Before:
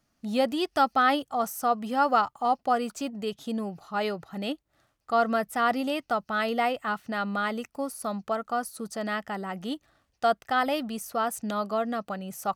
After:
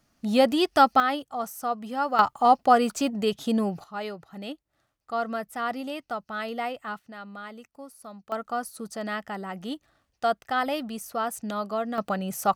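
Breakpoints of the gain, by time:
+5 dB
from 1 s -3.5 dB
from 2.19 s +6.5 dB
from 3.84 s -5 dB
from 6.99 s -11.5 dB
from 8.32 s -1 dB
from 11.98 s +6 dB

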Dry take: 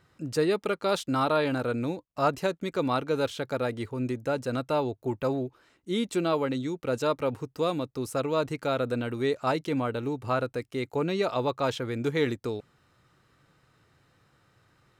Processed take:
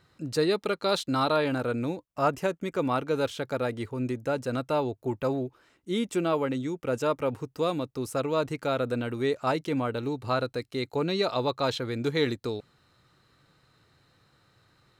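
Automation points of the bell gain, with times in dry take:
bell 4100 Hz 0.23 oct
+8 dB
from 1.36 s -2 dB
from 2.09 s -11 dB
from 2.98 s -1.5 dB
from 5.98 s -9 dB
from 7.3 s -0.5 dB
from 9.98 s +10 dB

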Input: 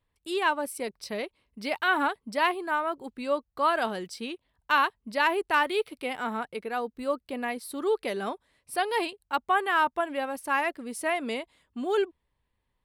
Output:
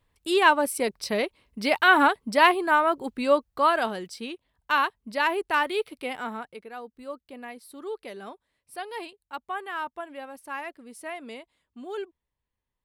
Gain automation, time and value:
3.31 s +7 dB
3.99 s 0 dB
6.15 s 0 dB
6.69 s -8.5 dB

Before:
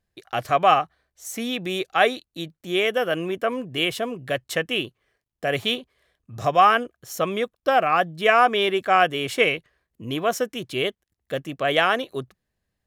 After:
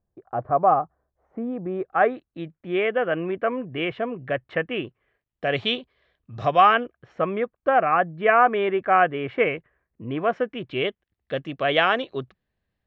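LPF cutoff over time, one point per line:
LPF 24 dB/oct
1.56 s 1100 Hz
2.41 s 2300 Hz
4.82 s 2300 Hz
5.56 s 4100 Hz
6.54 s 4100 Hz
7.24 s 2100 Hz
10.07 s 2100 Hz
11.39 s 4000 Hz

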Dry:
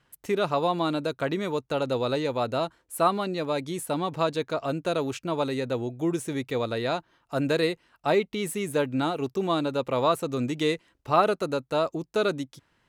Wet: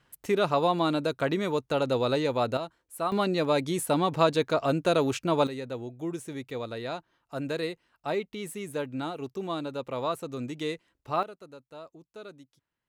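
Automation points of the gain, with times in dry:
+0.5 dB
from 2.57 s -7.5 dB
from 3.12 s +3 dB
from 5.47 s -7 dB
from 11.23 s -19.5 dB

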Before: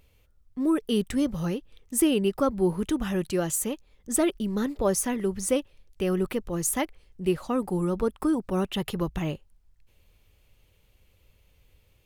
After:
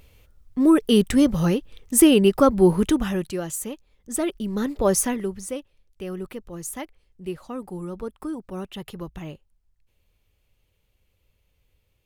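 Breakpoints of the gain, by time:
2.85 s +8 dB
3.39 s -2.5 dB
4.11 s -2.5 dB
5 s +5.5 dB
5.51 s -6.5 dB

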